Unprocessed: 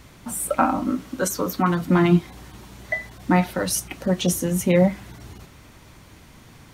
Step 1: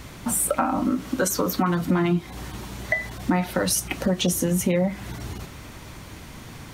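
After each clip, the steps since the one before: in parallel at 0 dB: peak limiter -15 dBFS, peak gain reduction 10.5 dB; on the sum: compression 4:1, threshold -21 dBFS, peak gain reduction 11 dB; trim +1 dB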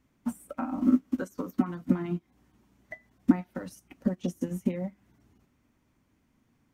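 fifteen-band graphic EQ 250 Hz +10 dB, 4 kHz -6 dB, 10 kHz -4 dB; upward expansion 2.5:1, over -29 dBFS; trim -4 dB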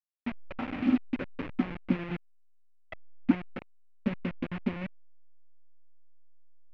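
send-on-delta sampling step -30 dBFS; four-pole ladder low-pass 2.8 kHz, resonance 50%; trim +7 dB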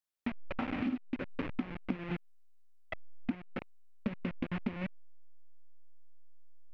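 compression 12:1, threshold -34 dBFS, peak gain reduction 18 dB; trim +3 dB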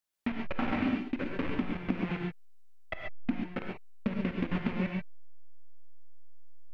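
gated-style reverb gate 160 ms rising, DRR 1 dB; trim +3 dB

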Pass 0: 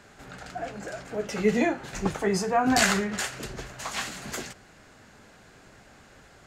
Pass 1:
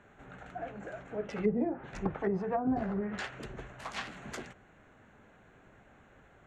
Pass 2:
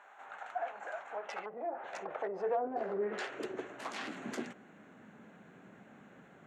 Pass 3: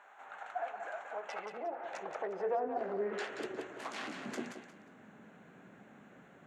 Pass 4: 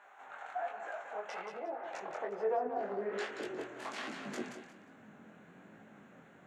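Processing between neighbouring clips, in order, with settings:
local Wiener filter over 9 samples; low-pass that closes with the level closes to 560 Hz, closed at -19.5 dBFS; trim -5.5 dB
Chebyshev shaper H 2 -10 dB, 4 -16 dB, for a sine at -17.5 dBFS; peak limiter -30.5 dBFS, peak gain reduction 11 dB; high-pass sweep 850 Hz -> 190 Hz, 1.18–5.05 s; trim +1 dB
thinning echo 179 ms, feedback 25%, level -7 dB; trim -1 dB
chorus 1.2 Hz, delay 18 ms, depth 6.2 ms; trim +3 dB

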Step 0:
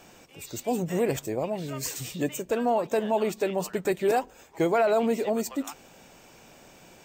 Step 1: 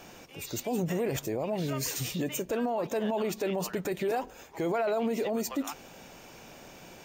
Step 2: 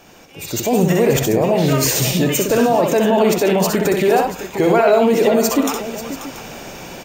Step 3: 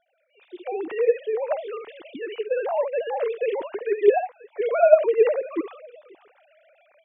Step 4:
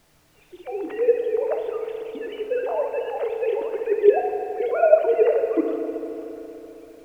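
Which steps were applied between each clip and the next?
band-stop 7.9 kHz, Q 6.2; peak limiter -25.5 dBFS, peak gain reduction 11.5 dB; trim +3 dB
level rider gain up to 12 dB; on a send: multi-tap echo 64/94/536/683 ms -4.5/-17/-12.5/-16 dB; on the sum: trim +2.5 dB
formants replaced by sine waves; upward expansion 1.5:1, over -34 dBFS; trim -4.5 dB
added noise pink -57 dBFS; dynamic bell 280 Hz, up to +7 dB, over -34 dBFS, Q 1.2; FDN reverb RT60 3.7 s, high-frequency decay 0.55×, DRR 4.5 dB; trim -3 dB

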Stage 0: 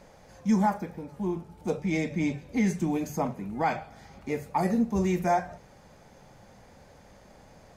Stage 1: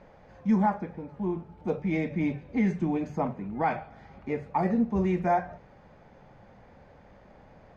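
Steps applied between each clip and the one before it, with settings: low-pass 2.5 kHz 12 dB/octave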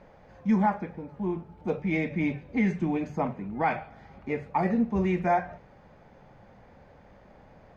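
dynamic bell 2.4 kHz, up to +5 dB, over -48 dBFS, Q 1.1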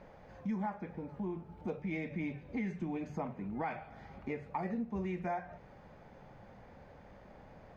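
compression 3:1, threshold -36 dBFS, peak gain reduction 12.5 dB; trim -1.5 dB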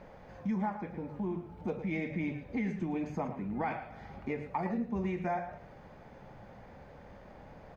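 echo from a far wall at 19 m, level -10 dB; trim +3 dB

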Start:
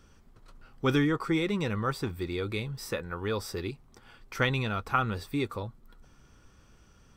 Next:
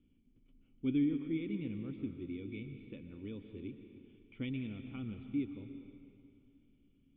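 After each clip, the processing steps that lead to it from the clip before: cascade formant filter i; algorithmic reverb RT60 2.5 s, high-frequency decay 0.9×, pre-delay 85 ms, DRR 7.5 dB; trim -1.5 dB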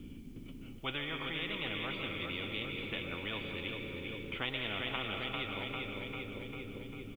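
on a send: feedback delay 397 ms, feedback 58%, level -8 dB; on the sum: spectrum-flattening compressor 10:1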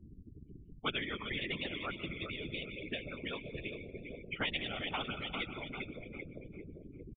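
expander on every frequency bin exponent 3; resampled via 8 kHz; whisper effect; trim +7.5 dB

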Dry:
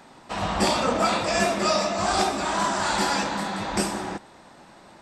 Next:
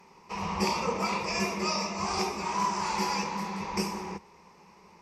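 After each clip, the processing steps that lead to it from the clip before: rippled EQ curve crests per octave 0.81, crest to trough 14 dB; trim -8.5 dB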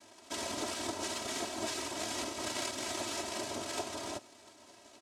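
noise-vocoded speech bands 2; compression, threshold -33 dBFS, peak gain reduction 10 dB; comb 3.1 ms, depth 93%; trim -4 dB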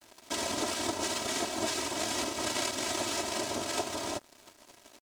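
in parallel at -2 dB: compression, threshold -45 dBFS, peak gain reduction 12.5 dB; on the sum: crossover distortion -52 dBFS; trim +4 dB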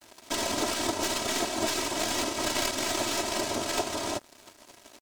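tracing distortion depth 0.033 ms; trim +3.5 dB

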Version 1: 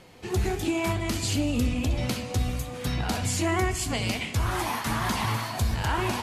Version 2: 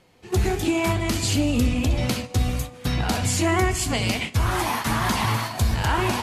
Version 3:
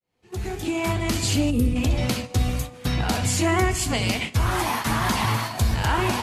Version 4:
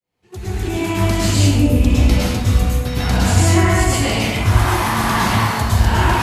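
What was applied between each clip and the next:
gate -32 dBFS, range -11 dB; trim +4.5 dB
fade-in on the opening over 1.10 s; time-frequency box 1.50–1.76 s, 530–8300 Hz -10 dB
plate-style reverb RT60 1.2 s, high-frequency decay 0.5×, pre-delay 95 ms, DRR -7 dB; trim -1 dB

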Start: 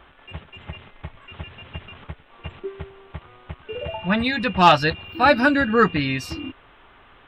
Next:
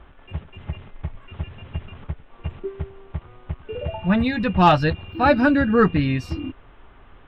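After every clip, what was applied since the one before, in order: tilt EQ -2.5 dB/octave; trim -2 dB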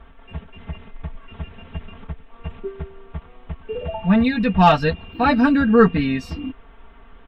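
comb 4.4 ms, depth 84%; trim -1 dB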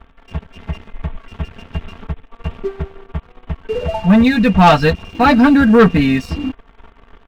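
waveshaping leveller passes 2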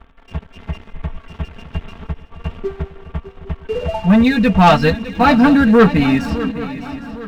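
shuffle delay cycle 809 ms, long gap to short 3:1, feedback 40%, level -14 dB; trim -1 dB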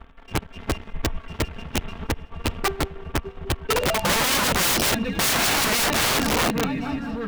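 integer overflow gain 16 dB

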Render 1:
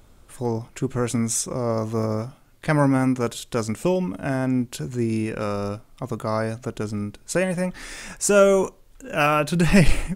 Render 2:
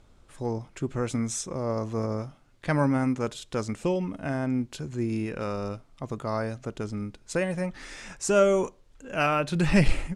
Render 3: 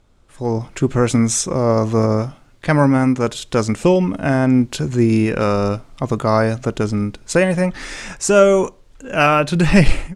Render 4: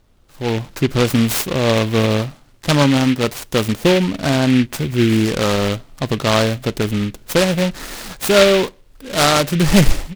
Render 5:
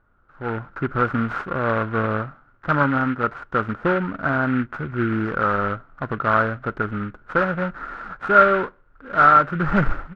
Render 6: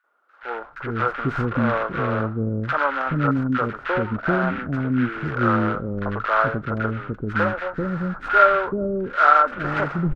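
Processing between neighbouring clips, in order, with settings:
low-pass 7.2 kHz 12 dB/octave; trim -5 dB
level rider gain up to 15 dB
delay time shaken by noise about 2.4 kHz, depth 0.11 ms
resonant low-pass 1.4 kHz, resonance Q 9.2; trim -8.5 dB
three bands offset in time highs, mids, lows 40/430 ms, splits 430/1400 Hz; trim +2 dB

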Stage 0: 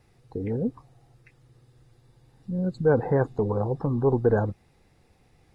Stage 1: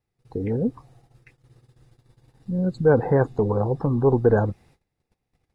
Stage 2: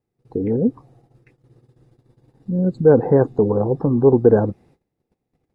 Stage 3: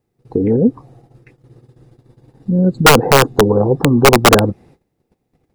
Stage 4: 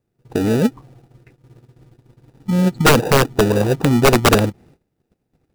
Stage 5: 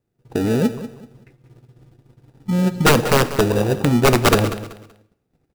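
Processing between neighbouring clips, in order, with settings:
gate -56 dBFS, range -23 dB; trim +3.5 dB
peaking EQ 310 Hz +13.5 dB 3 oct; trim -6.5 dB
in parallel at -3 dB: compression, threshold -23 dBFS, peak gain reduction 15 dB; on the sum: integer overflow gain 4.5 dB; trim +3.5 dB
in parallel at -5 dB: sample-and-hold 41×; on the sum: endings held to a fixed fall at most 530 dB/s; trim -5.5 dB
feedback delay 190 ms, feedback 27%, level -13.5 dB; on a send at -14 dB: reverberation RT60 0.75 s, pre-delay 7 ms; on the sum: trim -2 dB

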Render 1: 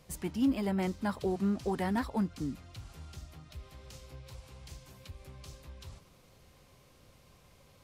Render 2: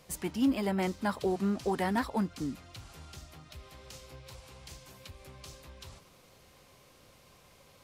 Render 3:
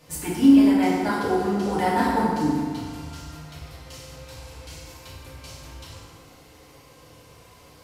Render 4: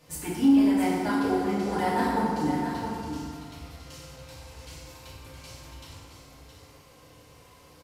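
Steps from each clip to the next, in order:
bass shelf 200 Hz -8.5 dB; trim +4 dB
FDN reverb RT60 1.9 s, low-frequency decay 0.9×, high-frequency decay 0.6×, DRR -8.5 dB
saturation -6.5 dBFS, distortion -22 dB; on a send: delay 667 ms -8 dB; on the sum: trim -4 dB

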